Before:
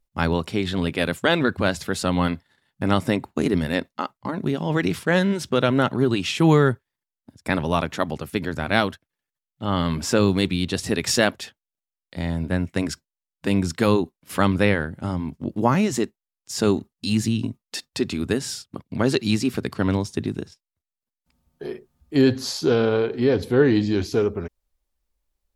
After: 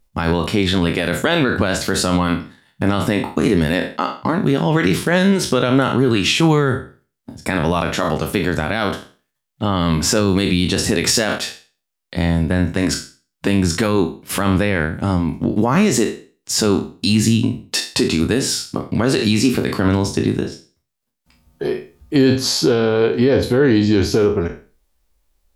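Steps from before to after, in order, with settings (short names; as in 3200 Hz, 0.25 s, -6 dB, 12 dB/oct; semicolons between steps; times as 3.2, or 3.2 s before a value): spectral trails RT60 0.35 s; in parallel at -2 dB: compressor, threshold -27 dBFS, peak gain reduction 14.5 dB; on the sum: limiter -11 dBFS, peak gain reduction 11.5 dB; gain +5.5 dB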